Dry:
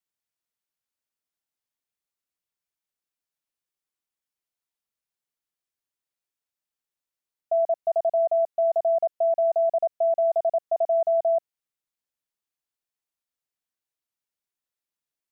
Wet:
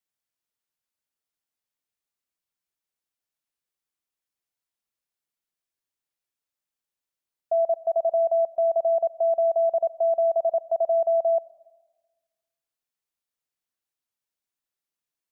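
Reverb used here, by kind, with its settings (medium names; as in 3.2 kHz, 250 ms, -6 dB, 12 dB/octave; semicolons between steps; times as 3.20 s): algorithmic reverb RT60 1.3 s, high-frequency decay 0.9×, pre-delay 40 ms, DRR 19.5 dB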